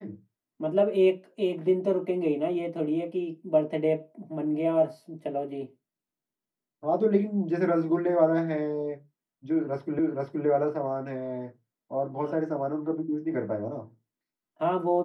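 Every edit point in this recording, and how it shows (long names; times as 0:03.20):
0:09.99: the same again, the last 0.47 s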